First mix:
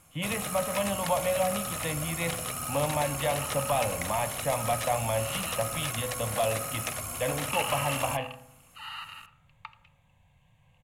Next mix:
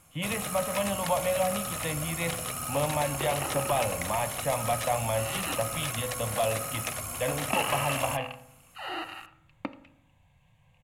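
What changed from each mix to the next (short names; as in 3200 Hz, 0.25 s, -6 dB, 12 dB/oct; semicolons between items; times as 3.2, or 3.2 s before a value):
second sound: remove rippled Chebyshev high-pass 850 Hz, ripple 6 dB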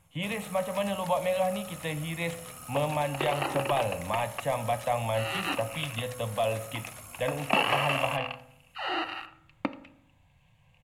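first sound -10.5 dB; second sound +4.5 dB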